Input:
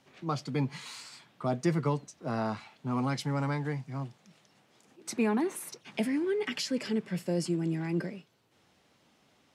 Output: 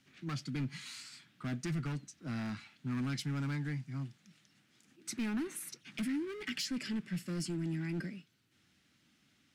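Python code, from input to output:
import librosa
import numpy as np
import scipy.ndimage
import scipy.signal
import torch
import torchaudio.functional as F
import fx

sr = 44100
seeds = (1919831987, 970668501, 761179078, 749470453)

y = np.clip(10.0 ** (28.5 / 20.0) * x, -1.0, 1.0) / 10.0 ** (28.5 / 20.0)
y = fx.band_shelf(y, sr, hz=660.0, db=-13.0, octaves=1.7)
y = y * librosa.db_to_amplitude(-2.5)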